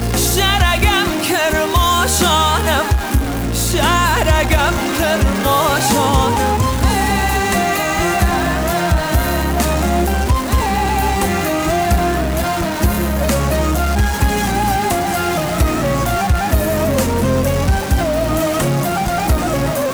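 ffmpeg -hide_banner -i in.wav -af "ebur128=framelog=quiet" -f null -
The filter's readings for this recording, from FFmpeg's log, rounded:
Integrated loudness:
  I:         -15.6 LUFS
  Threshold: -25.6 LUFS
Loudness range:
  LRA:         2.2 LU
  Threshold: -35.7 LUFS
  LRA low:   -16.6 LUFS
  LRA high:  -14.4 LUFS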